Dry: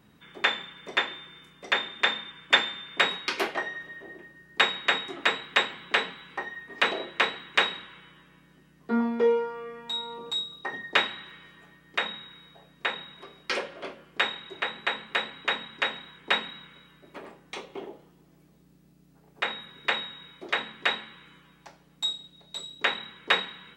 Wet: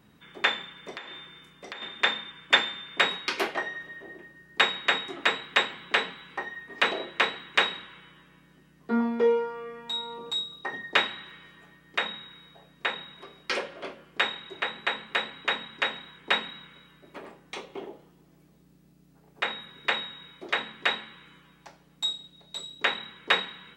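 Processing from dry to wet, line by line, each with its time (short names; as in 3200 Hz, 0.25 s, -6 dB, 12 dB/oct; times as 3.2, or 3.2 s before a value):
0.91–1.82 compressor, threshold -37 dBFS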